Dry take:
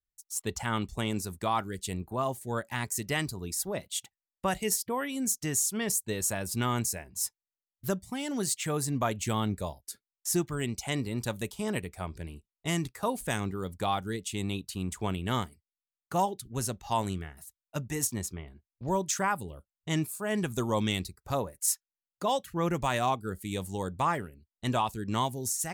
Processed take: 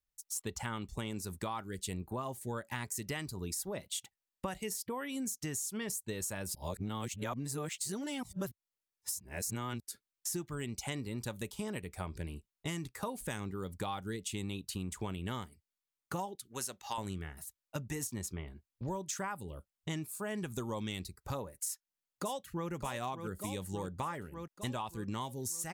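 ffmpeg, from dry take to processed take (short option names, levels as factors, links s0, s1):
-filter_complex "[0:a]asettb=1/sr,asplit=3[s0][s1][s2];[s0]atrim=end=16.354[s3];[s1]atrim=start=16.35:end=16.98,asetpts=PTS-STARTPTS,afade=t=in:d=0.004:c=qsin,afade=t=out:st=0.626:d=0.004:c=qsin,highpass=f=870:p=1[s4];[s2]atrim=start=16.976[s5];[s3][s4]acrossfade=d=0.004:c1=hsin:c2=qsin[s6];[s6][s5]acrossfade=d=0.004:c1=qsin:c2=hsin,asplit=2[s7][s8];[s8]afade=t=in:st=21.66:d=0.01,afade=t=out:st=22.7:d=0.01,aecho=0:1:590|1180|1770|2360|2950|3540|4130|4720|5310:0.334965|0.217728|0.141523|0.0919899|0.0597934|0.0388657|0.0252627|0.0164208|0.0106735[s9];[s7][s9]amix=inputs=2:normalize=0,asplit=3[s10][s11][s12];[s10]atrim=end=6.552[s13];[s11]atrim=start=6.548:end=9.802,asetpts=PTS-STARTPTS,areverse[s14];[s12]atrim=start=9.798[s15];[s13][s14]acrossfade=d=0.004:c1=hsin:c2=hsin[s16];[s16][s15]acrossfade=d=0.004:c1=hsin:c2=hsin,deesser=0.4,bandreject=f=690:w=12,acompressor=threshold=0.0141:ratio=6,volume=1.19"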